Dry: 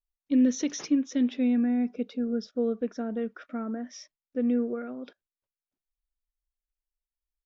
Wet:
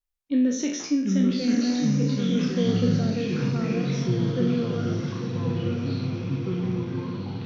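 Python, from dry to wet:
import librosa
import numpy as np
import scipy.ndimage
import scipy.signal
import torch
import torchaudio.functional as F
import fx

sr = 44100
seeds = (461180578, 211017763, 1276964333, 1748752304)

y = fx.spec_trails(x, sr, decay_s=0.56)
y = fx.echo_diffused(y, sr, ms=1062, feedback_pct=50, wet_db=-5)
y = fx.echo_pitch(y, sr, ms=633, semitones=-5, count=3, db_per_echo=-3.0)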